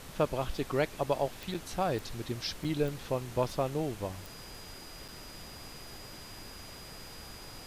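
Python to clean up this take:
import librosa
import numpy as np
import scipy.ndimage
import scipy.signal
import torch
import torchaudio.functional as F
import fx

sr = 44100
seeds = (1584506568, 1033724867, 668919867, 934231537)

y = fx.fix_declick_ar(x, sr, threshold=10.0)
y = fx.notch(y, sr, hz=4900.0, q=30.0)
y = fx.fix_interpolate(y, sr, at_s=(1.54, 2.64, 5.08), length_ms=5.8)
y = fx.noise_reduce(y, sr, print_start_s=4.76, print_end_s=5.26, reduce_db=30.0)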